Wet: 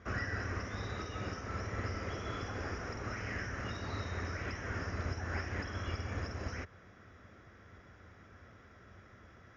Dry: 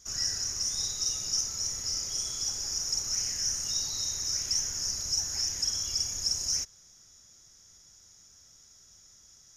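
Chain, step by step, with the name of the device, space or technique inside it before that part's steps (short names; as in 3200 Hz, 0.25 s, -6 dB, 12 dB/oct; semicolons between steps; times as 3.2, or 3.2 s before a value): bass amplifier (compressor 4:1, threshold -32 dBFS, peak gain reduction 7 dB; speaker cabinet 80–2000 Hz, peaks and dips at 89 Hz +3 dB, 150 Hz -9 dB, 870 Hz -7 dB); gain +15.5 dB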